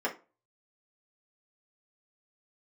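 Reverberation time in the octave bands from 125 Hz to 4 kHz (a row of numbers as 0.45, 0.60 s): 0.35, 0.35, 0.35, 0.30, 0.25, 0.20 s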